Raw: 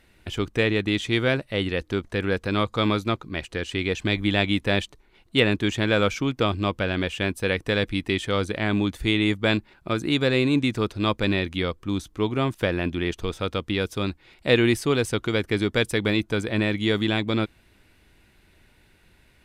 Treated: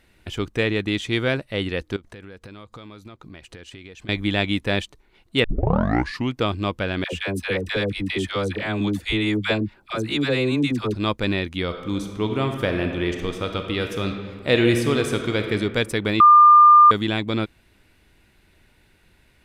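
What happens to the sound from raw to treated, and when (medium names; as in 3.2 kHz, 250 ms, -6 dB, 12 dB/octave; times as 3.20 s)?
1.96–4.09 s: compression 12:1, threshold -37 dBFS
5.44 s: tape start 0.90 s
7.04–10.95 s: phase dispersion lows, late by 87 ms, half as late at 660 Hz
11.63–15.52 s: reverb throw, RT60 1.8 s, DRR 4.5 dB
16.20–16.91 s: bleep 1.2 kHz -7 dBFS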